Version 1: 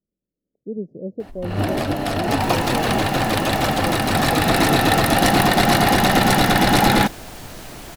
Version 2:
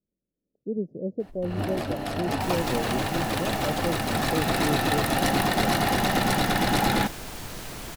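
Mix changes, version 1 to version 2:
speech: send -8.5 dB; first sound -8.0 dB

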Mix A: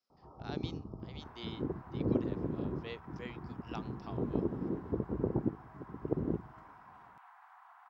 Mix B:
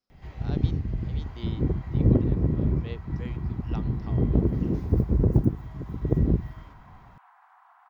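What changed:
first sound: remove rippled Chebyshev low-pass 1.3 kHz, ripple 3 dB; master: remove high-pass 560 Hz 6 dB/octave

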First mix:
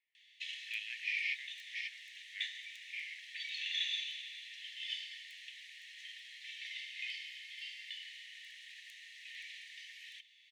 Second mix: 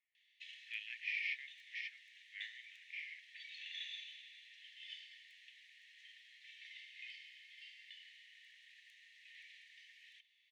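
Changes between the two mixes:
background -6.0 dB; master: add treble shelf 3.2 kHz -9 dB

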